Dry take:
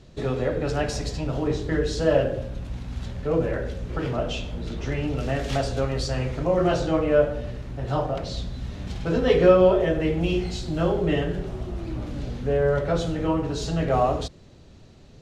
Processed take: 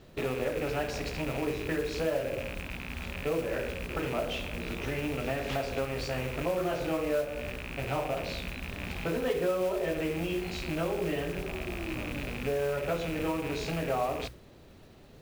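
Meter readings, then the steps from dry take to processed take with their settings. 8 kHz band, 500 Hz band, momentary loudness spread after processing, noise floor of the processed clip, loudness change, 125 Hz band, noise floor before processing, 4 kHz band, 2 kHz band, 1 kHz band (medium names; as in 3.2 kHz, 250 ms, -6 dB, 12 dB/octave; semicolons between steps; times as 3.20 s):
-5.0 dB, -8.5 dB, 6 LU, -53 dBFS, -8.0 dB, -10.5 dB, -48 dBFS, -4.5 dB, -2.0 dB, -7.0 dB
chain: rattle on loud lows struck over -35 dBFS, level -25 dBFS; hum notches 60/120 Hz; compression 6:1, threshold -26 dBFS, peak gain reduction 15 dB; modulation noise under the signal 14 dB; tone controls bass -6 dB, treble -9 dB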